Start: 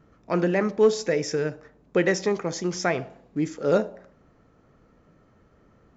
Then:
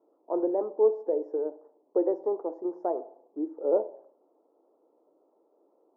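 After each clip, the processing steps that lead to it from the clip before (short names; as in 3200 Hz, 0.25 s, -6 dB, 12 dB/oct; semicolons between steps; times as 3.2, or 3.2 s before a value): elliptic band-pass 320–930 Hz, stop band 50 dB; gain -2.5 dB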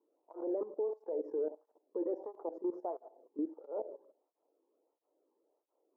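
level quantiser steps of 16 dB; limiter -30 dBFS, peak gain reduction 7.5 dB; tape flanging out of phase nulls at 1.5 Hz, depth 1.6 ms; gain +3 dB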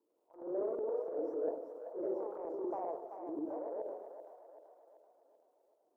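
echoes that change speed 94 ms, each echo +1 st, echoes 2; transient shaper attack -10 dB, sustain +6 dB; split-band echo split 550 Hz, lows 98 ms, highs 0.384 s, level -7 dB; gain -2 dB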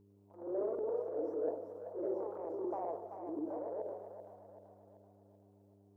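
buzz 100 Hz, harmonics 4, -65 dBFS -2 dB/oct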